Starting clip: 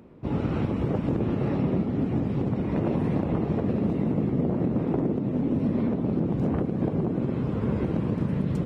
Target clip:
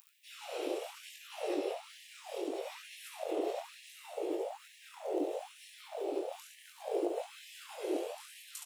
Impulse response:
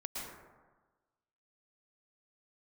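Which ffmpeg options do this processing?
-filter_complex "[0:a]aemphasis=mode=production:type=75kf,aecho=1:1:37|70:0.376|0.668,acrossover=split=680[a][b];[b]aexciter=amount=2.5:drive=6.8:freq=2.6k[c];[a][c]amix=inputs=2:normalize=0,dynaudnorm=f=100:g=21:m=4dB,alimiter=limit=-16.5dB:level=0:latency=1:release=133,equalizer=f=340:w=0.49:g=-8.5,afwtdn=0.0282,flanger=delay=19.5:depth=6.1:speed=0.71,afftfilt=real='re*gte(b*sr/1024,300*pow(1700/300,0.5+0.5*sin(2*PI*1.1*pts/sr)))':imag='im*gte(b*sr/1024,300*pow(1700/300,0.5+0.5*sin(2*PI*1.1*pts/sr)))':win_size=1024:overlap=0.75,volume=9.5dB"

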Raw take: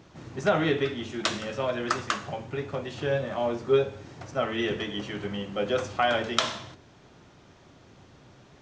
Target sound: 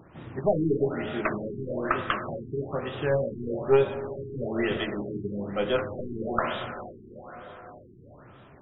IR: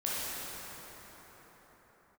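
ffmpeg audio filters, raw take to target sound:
-filter_complex "[0:a]aeval=exprs='0.596*(cos(1*acos(clip(val(0)/0.596,-1,1)))-cos(1*PI/2))+0.0668*(cos(4*acos(clip(val(0)/0.596,-1,1)))-cos(4*PI/2))':c=same,asplit=2[a][b];[1:a]atrim=start_sample=2205,lowshelf=f=330:g=-3[c];[b][c]afir=irnorm=-1:irlink=0,volume=-13.5dB[d];[a][d]amix=inputs=2:normalize=0,afftfilt=real='re*lt(b*sr/1024,420*pow(3900/420,0.5+0.5*sin(2*PI*1.1*pts/sr)))':imag='im*lt(b*sr/1024,420*pow(3900/420,0.5+0.5*sin(2*PI*1.1*pts/sr)))':win_size=1024:overlap=0.75"

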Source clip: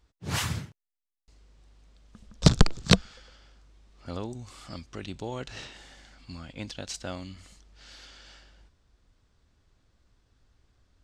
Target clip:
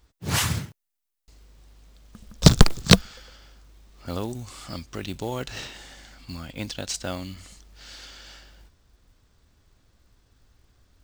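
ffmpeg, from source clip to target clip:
-af "acrusher=bits=6:mode=log:mix=0:aa=0.000001,highshelf=f=8.3k:g=6.5,volume=5dB"

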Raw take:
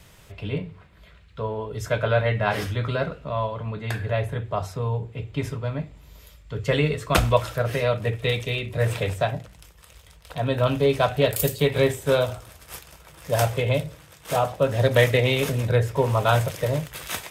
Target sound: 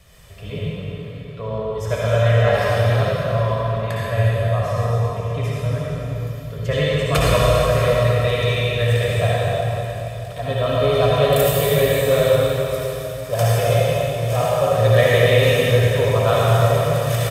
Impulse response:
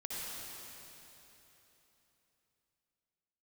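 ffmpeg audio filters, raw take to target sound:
-filter_complex "[0:a]aecho=1:1:1.7:0.47[a];[1:a]atrim=start_sample=2205[b];[a][b]afir=irnorm=-1:irlink=0,volume=2.5dB"

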